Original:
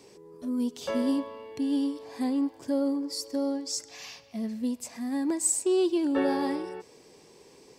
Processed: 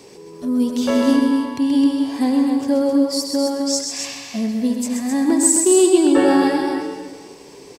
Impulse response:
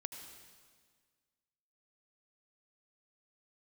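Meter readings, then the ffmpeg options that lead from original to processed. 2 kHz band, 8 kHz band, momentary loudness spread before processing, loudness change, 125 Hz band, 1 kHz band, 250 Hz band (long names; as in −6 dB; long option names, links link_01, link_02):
+13.0 dB, +12.0 dB, 12 LU, +11.5 dB, can't be measured, +12.5 dB, +12.0 dB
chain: -filter_complex "[0:a]aecho=1:1:128.3|262.4:0.501|0.501,asplit=2[link_01][link_02];[1:a]atrim=start_sample=2205[link_03];[link_02][link_03]afir=irnorm=-1:irlink=0,volume=7dB[link_04];[link_01][link_04]amix=inputs=2:normalize=0,volume=2dB"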